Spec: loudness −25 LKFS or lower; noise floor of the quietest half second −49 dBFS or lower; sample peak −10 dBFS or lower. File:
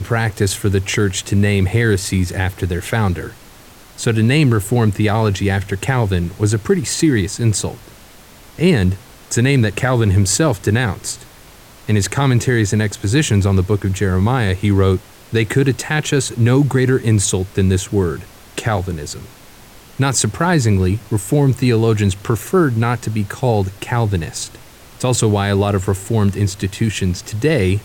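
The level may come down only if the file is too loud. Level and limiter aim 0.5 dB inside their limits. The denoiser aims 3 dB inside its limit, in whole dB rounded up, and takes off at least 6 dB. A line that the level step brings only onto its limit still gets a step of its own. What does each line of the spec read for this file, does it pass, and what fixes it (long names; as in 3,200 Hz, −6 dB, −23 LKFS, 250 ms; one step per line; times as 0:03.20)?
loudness −17.0 LKFS: out of spec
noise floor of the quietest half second −42 dBFS: out of spec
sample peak −3.5 dBFS: out of spec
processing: level −8.5 dB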